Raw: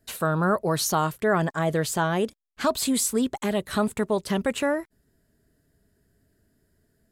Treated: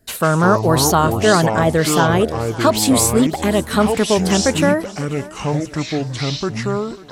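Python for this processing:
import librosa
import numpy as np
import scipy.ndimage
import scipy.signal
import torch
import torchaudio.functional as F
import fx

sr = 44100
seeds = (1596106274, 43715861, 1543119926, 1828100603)

y = fx.echo_pitch(x, sr, ms=120, semitones=-6, count=2, db_per_echo=-6.0)
y = fx.echo_thinned(y, sr, ms=546, feedback_pct=53, hz=150.0, wet_db=-19)
y = y * 10.0 ** (8.5 / 20.0)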